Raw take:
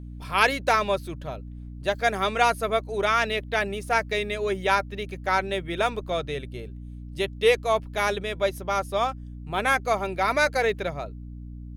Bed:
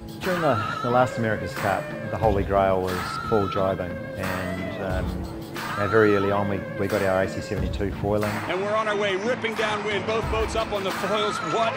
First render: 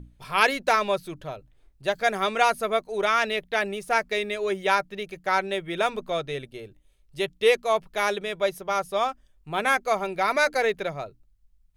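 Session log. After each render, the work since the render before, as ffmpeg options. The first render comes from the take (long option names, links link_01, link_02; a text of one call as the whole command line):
ffmpeg -i in.wav -af "bandreject=frequency=60:width_type=h:width=6,bandreject=frequency=120:width_type=h:width=6,bandreject=frequency=180:width_type=h:width=6,bandreject=frequency=240:width_type=h:width=6,bandreject=frequency=300:width_type=h:width=6" out.wav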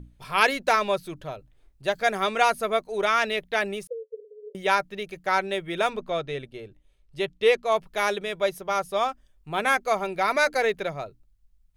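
ffmpeg -i in.wav -filter_complex "[0:a]asettb=1/sr,asplit=3[link_01][link_02][link_03];[link_01]atrim=end=3.874[link_04];[link_02]atrim=start=3.87:end=4.55,asetpts=PTS-STARTPTS,afade=type=in:duration=0.004:curve=qsin,afade=type=out:start_time=0.676:duration=0.004:curve=qsin,asuperpass=centerf=480:order=12:qfactor=4.9[link_05];[link_03]atrim=start=4.546[link_06];[link_04][link_05]acrossfade=duration=0.004:curve1=hsin:curve2=qsin[link_07];[link_07][link_06]acrossfade=duration=0.004:curve1=qsin:curve2=hsin,asettb=1/sr,asplit=3[link_08][link_09][link_10];[link_08]atrim=end=5.934[link_11];[link_09]atrim=start=5.93:end=7.72,asetpts=PTS-STARTPTS,afade=type=in:duration=0.004:curve=qsin,afade=type=out:start_time=1.786:duration=0.004:curve=qsin,highshelf=frequency=7200:gain=-11[link_12];[link_10]atrim=start=7.716[link_13];[link_11][link_12]acrossfade=duration=0.004:curve1=hsin:curve2=qsin[link_14];[link_14][link_13]acrossfade=duration=0.004:curve1=qsin:curve2=hsin" out.wav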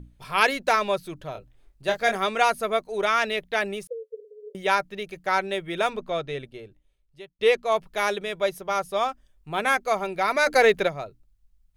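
ffmpeg -i in.wav -filter_complex "[0:a]asettb=1/sr,asplit=3[link_01][link_02][link_03];[link_01]atrim=end=1.324[link_04];[link_02]atrim=start=1.32:end=2.16,asetpts=PTS-STARTPTS,afade=type=in:duration=0.004:curve=qsin,afade=type=out:start_time=0.836:duration=0.004:curve=qsin,asplit=2[link_05][link_06];[link_06]adelay=26,volume=-5dB[link_07];[link_05][link_07]amix=inputs=2:normalize=0,atrim=end_sample=37044[link_08];[link_03]atrim=start=2.156[link_09];[link_04][link_08]acrossfade=duration=0.004:curve1=hsin:curve2=qsin[link_10];[link_10][link_09]acrossfade=duration=0.004:curve1=qsin:curve2=hsin,asplit=3[link_11][link_12][link_13];[link_11]afade=type=out:start_time=10.46:duration=0.02[link_14];[link_12]acontrast=67,afade=type=in:start_time=10.46:duration=0.02,afade=type=out:start_time=10.87:duration=0.02[link_15];[link_13]afade=type=in:start_time=10.87:duration=0.02[link_16];[link_14][link_15][link_16]amix=inputs=3:normalize=0,asplit=2[link_17][link_18];[link_17]atrim=end=7.39,asetpts=PTS-STARTPTS,afade=type=out:start_time=6.45:duration=0.94[link_19];[link_18]atrim=start=7.39,asetpts=PTS-STARTPTS,afade=type=in:duration=0.004:curve=hsin[link_20];[link_19][link_20]concat=n=2:v=0:a=1" out.wav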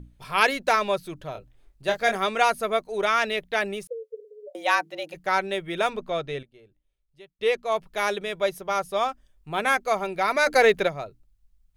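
ffmpeg -i in.wav -filter_complex "[0:a]asplit=3[link_01][link_02][link_03];[link_01]afade=type=out:start_time=4.46:duration=0.02[link_04];[link_02]afreqshift=150,afade=type=in:start_time=4.46:duration=0.02,afade=type=out:start_time=5.13:duration=0.02[link_05];[link_03]afade=type=in:start_time=5.13:duration=0.02[link_06];[link_04][link_05][link_06]amix=inputs=3:normalize=0,asplit=2[link_07][link_08];[link_07]atrim=end=6.43,asetpts=PTS-STARTPTS,afade=type=out:start_time=6.426:duration=0.004:curve=hsin:silence=0.177828[link_09];[link_08]atrim=start=6.43,asetpts=PTS-STARTPTS,afade=type=in:duration=1.78:silence=0.177828[link_10];[link_09][link_10]concat=n=2:v=0:a=1" out.wav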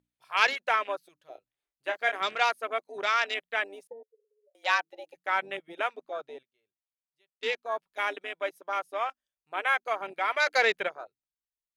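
ffmpeg -i in.wav -af "highpass=frequency=1400:poles=1,afwtdn=0.0178" out.wav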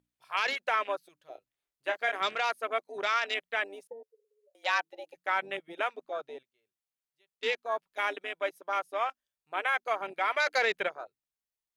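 ffmpeg -i in.wav -af "alimiter=limit=-17dB:level=0:latency=1:release=33" out.wav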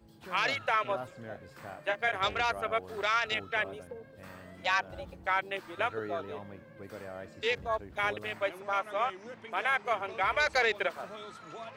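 ffmpeg -i in.wav -i bed.wav -filter_complex "[1:a]volume=-21dB[link_01];[0:a][link_01]amix=inputs=2:normalize=0" out.wav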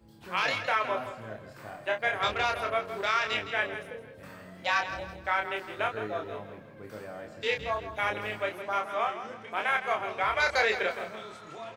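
ffmpeg -i in.wav -filter_complex "[0:a]asplit=2[link_01][link_02];[link_02]adelay=28,volume=-4.5dB[link_03];[link_01][link_03]amix=inputs=2:normalize=0,asplit=2[link_04][link_05];[link_05]aecho=0:1:163|326|489|652:0.282|0.107|0.0407|0.0155[link_06];[link_04][link_06]amix=inputs=2:normalize=0" out.wav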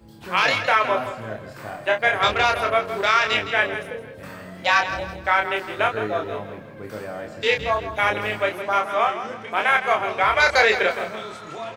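ffmpeg -i in.wav -af "volume=9dB" out.wav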